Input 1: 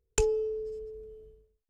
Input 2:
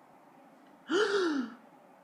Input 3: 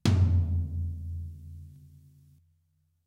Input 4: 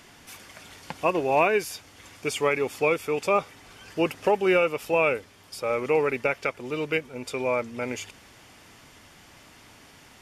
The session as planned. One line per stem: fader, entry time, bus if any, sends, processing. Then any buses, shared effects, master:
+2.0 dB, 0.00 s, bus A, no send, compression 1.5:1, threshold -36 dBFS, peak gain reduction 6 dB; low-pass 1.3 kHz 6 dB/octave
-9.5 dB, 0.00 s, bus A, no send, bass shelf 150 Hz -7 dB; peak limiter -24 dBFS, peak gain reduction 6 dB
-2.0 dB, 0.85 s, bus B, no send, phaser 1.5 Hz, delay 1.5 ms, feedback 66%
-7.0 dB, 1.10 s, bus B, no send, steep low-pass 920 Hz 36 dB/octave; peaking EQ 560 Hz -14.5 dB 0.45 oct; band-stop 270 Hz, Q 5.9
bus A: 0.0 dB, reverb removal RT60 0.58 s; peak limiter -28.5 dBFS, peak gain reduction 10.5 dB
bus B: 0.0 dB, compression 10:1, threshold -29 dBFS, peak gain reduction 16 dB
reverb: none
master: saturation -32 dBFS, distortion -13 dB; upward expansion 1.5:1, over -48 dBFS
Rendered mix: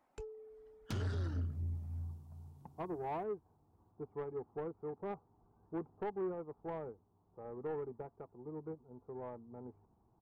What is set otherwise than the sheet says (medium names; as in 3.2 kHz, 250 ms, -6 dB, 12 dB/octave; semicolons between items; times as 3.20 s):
stem 1 +2.0 dB -> -10.0 dB; stem 3: missing phaser 1.5 Hz, delay 1.5 ms, feedback 66%; stem 4: entry 1.10 s -> 1.75 s